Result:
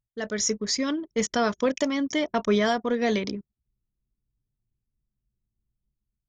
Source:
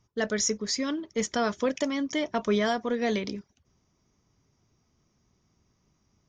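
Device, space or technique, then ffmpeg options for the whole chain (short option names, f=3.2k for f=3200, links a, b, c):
voice memo with heavy noise removal: -af "anlmdn=0.158,dynaudnorm=f=110:g=7:m=8dB,volume=-5dB"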